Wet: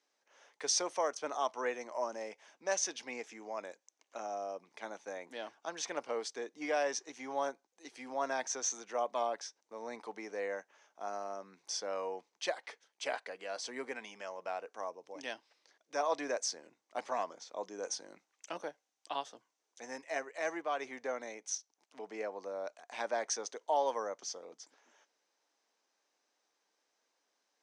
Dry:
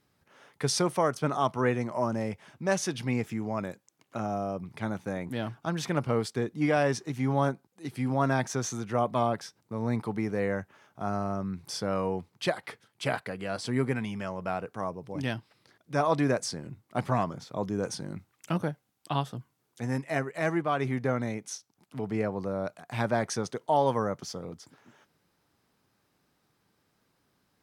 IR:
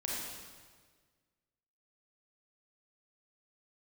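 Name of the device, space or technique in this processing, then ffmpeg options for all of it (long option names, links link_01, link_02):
phone speaker on a table: -af "highpass=frequency=370:width=0.5412,highpass=frequency=370:width=1.3066,equalizer=frequency=380:width_type=q:width=4:gain=-6,equalizer=frequency=1300:width_type=q:width=4:gain=-5,equalizer=frequency=6100:width_type=q:width=4:gain=9,lowpass=frequency=8100:width=0.5412,lowpass=frequency=8100:width=1.3066,volume=-5.5dB"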